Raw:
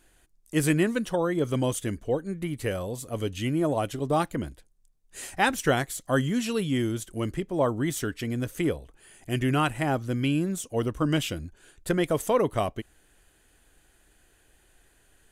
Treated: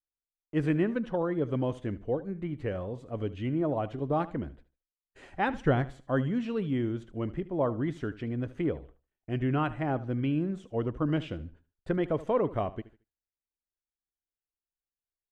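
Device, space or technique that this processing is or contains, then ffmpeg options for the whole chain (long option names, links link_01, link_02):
phone in a pocket: -filter_complex "[0:a]agate=range=-39dB:threshold=-48dB:ratio=16:detection=peak,asettb=1/sr,asplit=3[link_01][link_02][link_03];[link_01]atrim=end=5.544[link_04];[link_02]atrim=start=5.54:end=5.94,asetpts=PTS-STARTPTS,afade=type=in:duration=0.004:curve=qsin,afade=type=out:start_time=0.396:duration=0.004:curve=qsin,lowshelf=frequency=170:gain=9.5[link_05];[link_03]atrim=start=5.936[link_06];[link_04][link_05]acrossfade=duration=0.004:curve1=hsin:curve2=qsin[link_07];[link_07][link_06]acrossfade=duration=0.004:curve1=qsin:curve2=hsin,lowpass=3200,highshelf=frequency=2200:gain=-11,aecho=1:1:75|150|225:0.141|0.0381|0.0103,volume=-3dB"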